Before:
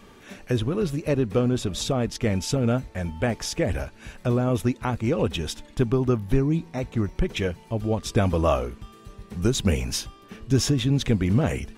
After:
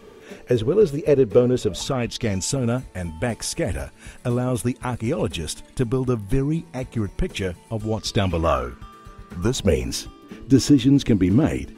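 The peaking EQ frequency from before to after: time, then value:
peaking EQ +12 dB 0.55 oct
1.67 s 440 Hz
2.05 s 2.7 kHz
2.54 s 9.6 kHz
7.77 s 9.6 kHz
8.55 s 1.4 kHz
9.35 s 1.4 kHz
9.86 s 300 Hz

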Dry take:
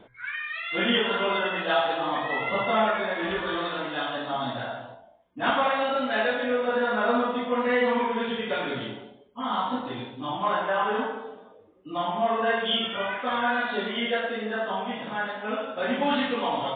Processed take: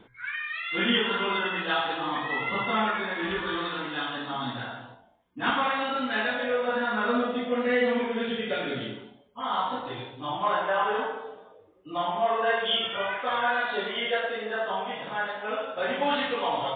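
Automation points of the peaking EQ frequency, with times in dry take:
peaking EQ -11.5 dB 0.46 oct
6.22 s 620 Hz
6.53 s 250 Hz
7.27 s 1 kHz
8.88 s 1 kHz
9.44 s 230 Hz

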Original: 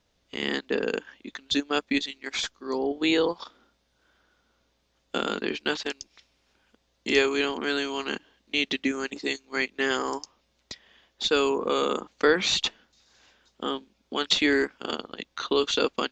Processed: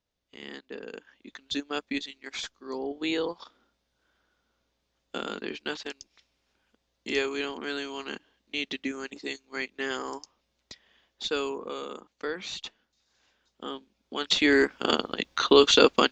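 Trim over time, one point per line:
0.90 s -13.5 dB
1.32 s -6 dB
11.33 s -6 dB
11.87 s -12.5 dB
12.66 s -12.5 dB
14.15 s -4.5 dB
14.83 s +6.5 dB

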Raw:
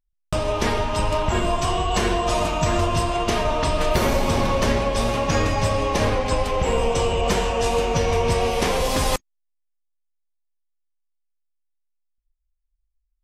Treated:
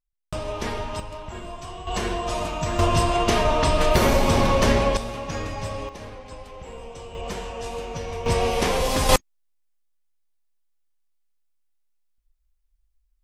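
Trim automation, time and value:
-7 dB
from 1.00 s -14.5 dB
from 1.87 s -5.5 dB
from 2.79 s +1.5 dB
from 4.97 s -9.5 dB
from 5.89 s -18 dB
from 7.15 s -11 dB
from 8.26 s -1 dB
from 9.09 s +6 dB

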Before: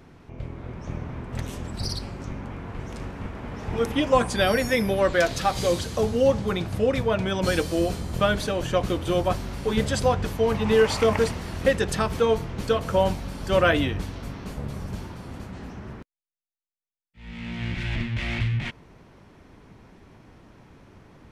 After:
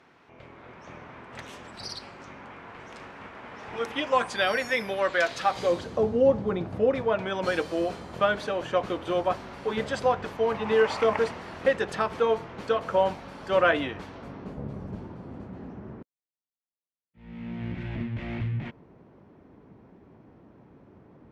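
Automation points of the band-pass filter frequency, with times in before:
band-pass filter, Q 0.54
5.32 s 1.7 kHz
6.07 s 410 Hz
6.63 s 410 Hz
7.25 s 1 kHz
14.04 s 1 kHz
14.57 s 330 Hz

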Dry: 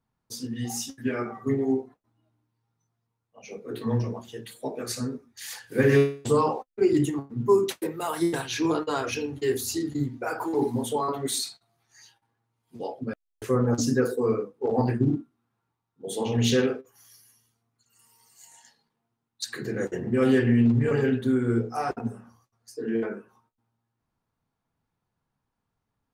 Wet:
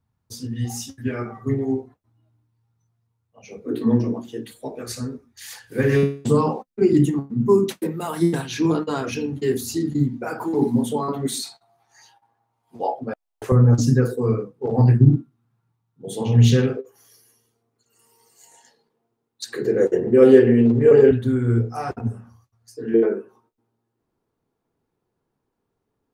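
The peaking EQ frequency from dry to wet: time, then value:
peaking EQ +14.5 dB 1.1 oct
89 Hz
from 3.66 s 280 Hz
from 4.52 s 60 Hz
from 6.03 s 190 Hz
from 11.44 s 780 Hz
from 13.52 s 130 Hz
from 16.77 s 440 Hz
from 21.11 s 93 Hz
from 22.94 s 390 Hz

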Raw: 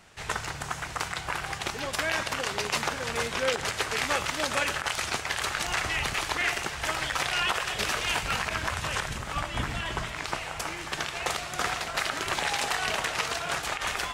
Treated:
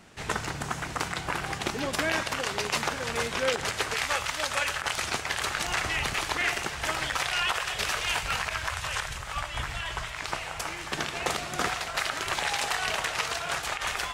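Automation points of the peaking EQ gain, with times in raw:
peaking EQ 250 Hz 1.6 oct
+8.5 dB
from 2.19 s +1 dB
from 3.94 s -10.5 dB
from 4.82 s +1 dB
from 7.17 s -7.5 dB
from 8.49 s -14 dB
from 10.22 s -3.5 dB
from 10.92 s +6.5 dB
from 11.69 s -4.5 dB

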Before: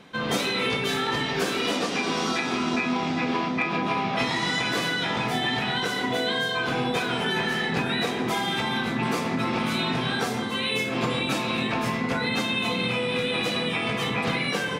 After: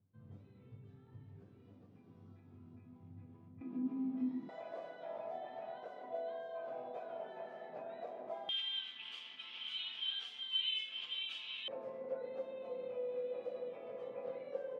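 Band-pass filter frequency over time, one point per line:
band-pass filter, Q 18
100 Hz
from 3.61 s 260 Hz
from 4.49 s 630 Hz
from 8.49 s 3.1 kHz
from 11.68 s 540 Hz

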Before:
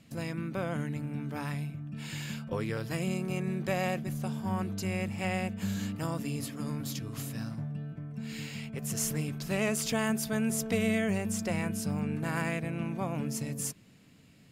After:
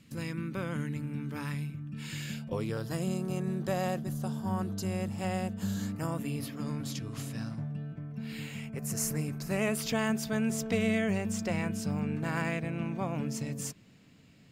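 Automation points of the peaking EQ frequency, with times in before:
peaking EQ -11.5 dB 0.5 oct
2.10 s 690 Hz
2.79 s 2.3 kHz
5.77 s 2.3 kHz
6.79 s 14 kHz
7.81 s 14 kHz
8.80 s 3.3 kHz
9.54 s 3.3 kHz
9.94 s 11 kHz

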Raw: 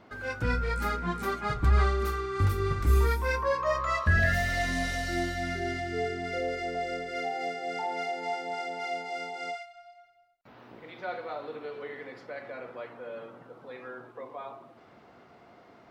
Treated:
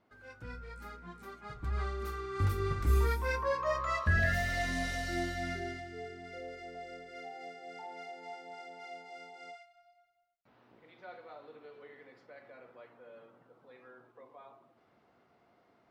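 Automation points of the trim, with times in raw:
1.33 s -17 dB
2.47 s -4.5 dB
5.52 s -4.5 dB
5.95 s -13 dB

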